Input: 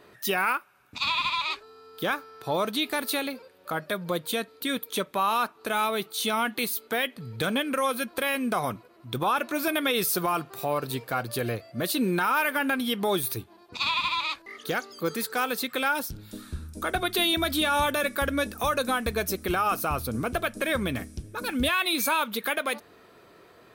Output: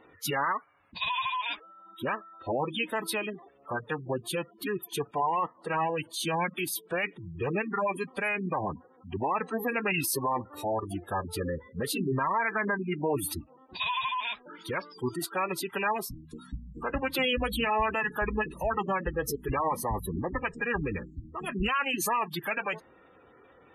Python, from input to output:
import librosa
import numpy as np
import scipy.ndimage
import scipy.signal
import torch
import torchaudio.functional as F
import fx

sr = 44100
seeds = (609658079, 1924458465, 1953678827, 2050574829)

y = fx.spec_gate(x, sr, threshold_db=-20, keep='strong')
y = fx.pitch_keep_formants(y, sr, semitones=-5.0)
y = F.gain(torch.from_numpy(y), -2.0).numpy()